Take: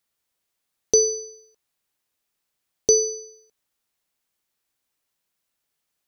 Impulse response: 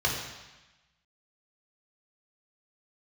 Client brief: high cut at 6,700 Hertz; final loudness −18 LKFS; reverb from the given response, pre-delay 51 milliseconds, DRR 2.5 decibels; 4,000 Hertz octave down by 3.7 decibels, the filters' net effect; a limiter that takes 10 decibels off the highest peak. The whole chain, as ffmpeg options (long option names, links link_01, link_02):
-filter_complex "[0:a]lowpass=6700,equalizer=frequency=4000:width_type=o:gain=-3.5,alimiter=limit=-17dB:level=0:latency=1,asplit=2[link_01][link_02];[1:a]atrim=start_sample=2205,adelay=51[link_03];[link_02][link_03]afir=irnorm=-1:irlink=0,volume=-14dB[link_04];[link_01][link_04]amix=inputs=2:normalize=0,volume=10dB"